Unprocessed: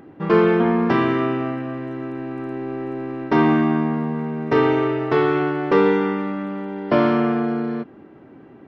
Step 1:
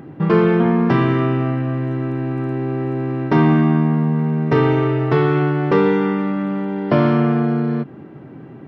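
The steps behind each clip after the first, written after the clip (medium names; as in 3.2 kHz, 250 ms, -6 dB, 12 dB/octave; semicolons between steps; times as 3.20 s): peaking EQ 140 Hz +12 dB 0.76 oct; in parallel at +2.5 dB: compression, threshold -23 dBFS, peak gain reduction 13.5 dB; on the sum: trim -3 dB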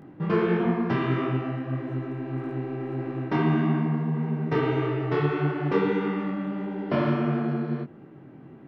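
dynamic bell 2.7 kHz, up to +3 dB, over -35 dBFS, Q 0.77; detune thickener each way 56 cents; trim -5.5 dB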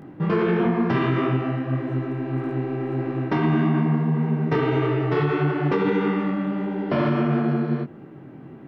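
peak limiter -17.5 dBFS, peak gain reduction 6.5 dB; trim +5 dB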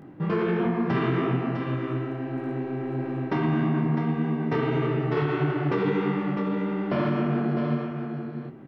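delay 654 ms -7 dB; trim -4 dB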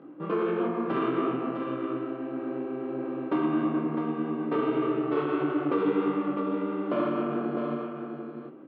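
partial rectifier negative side -3 dB; cabinet simulation 270–3600 Hz, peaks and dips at 300 Hz +9 dB, 530 Hz +7 dB, 830 Hz -3 dB, 1.2 kHz +7 dB, 1.9 kHz -8 dB; trim -2.5 dB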